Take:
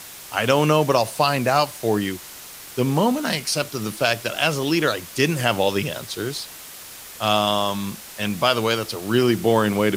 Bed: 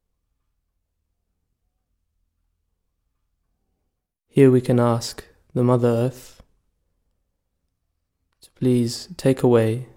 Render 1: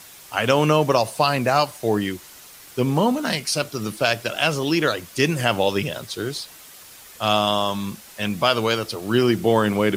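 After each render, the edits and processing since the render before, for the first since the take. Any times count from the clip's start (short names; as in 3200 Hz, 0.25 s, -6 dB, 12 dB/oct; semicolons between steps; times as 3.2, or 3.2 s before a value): denoiser 6 dB, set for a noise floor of -40 dBFS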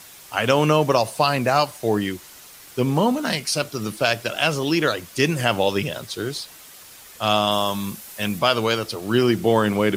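7.51–8.39 bell 13000 Hz +7.5 dB 1.1 oct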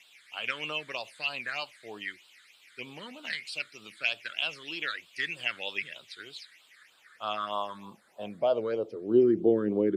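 phaser stages 8, 3.2 Hz, lowest notch 760–2000 Hz; band-pass sweep 2300 Hz -> 360 Hz, 6.44–9.28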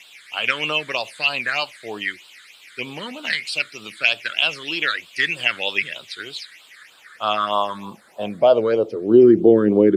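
gain +12 dB; limiter -3 dBFS, peak gain reduction 3 dB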